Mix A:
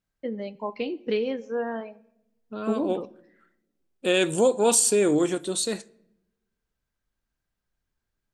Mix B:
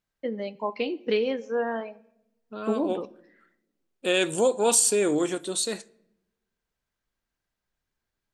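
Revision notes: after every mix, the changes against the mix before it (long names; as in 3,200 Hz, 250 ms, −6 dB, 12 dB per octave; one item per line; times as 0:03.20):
first voice +3.5 dB
master: add low-shelf EQ 300 Hz −6.5 dB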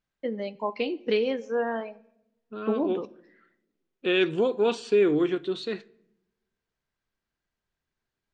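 second voice: add loudspeaker in its box 100–3,500 Hz, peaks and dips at 140 Hz +5 dB, 390 Hz +6 dB, 580 Hz −10 dB, 860 Hz −7 dB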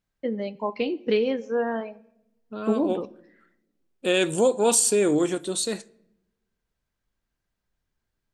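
second voice: remove loudspeaker in its box 100–3,500 Hz, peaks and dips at 140 Hz +5 dB, 390 Hz +6 dB, 580 Hz −10 dB, 860 Hz −7 dB
master: add low-shelf EQ 300 Hz +6.5 dB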